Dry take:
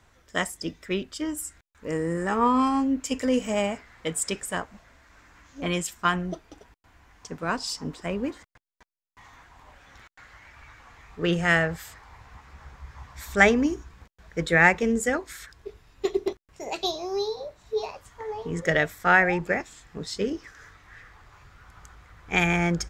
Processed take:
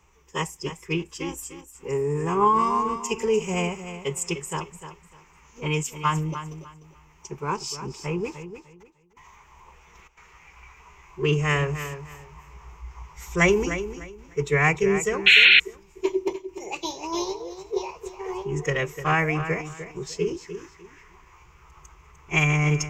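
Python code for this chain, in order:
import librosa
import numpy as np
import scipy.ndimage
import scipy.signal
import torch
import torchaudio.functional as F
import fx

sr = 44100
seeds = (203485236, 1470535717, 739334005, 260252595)

p1 = x + fx.echo_feedback(x, sr, ms=300, feedback_pct=24, wet_db=-11.0, dry=0)
p2 = fx.pitch_keep_formants(p1, sr, semitones=-2.5)
p3 = fx.spec_paint(p2, sr, seeds[0], shape='noise', start_s=15.26, length_s=0.34, low_hz=1400.0, high_hz=4300.0, level_db=-13.0)
p4 = fx.ripple_eq(p3, sr, per_octave=0.75, db=13)
y = p4 * 10.0 ** (-2.0 / 20.0)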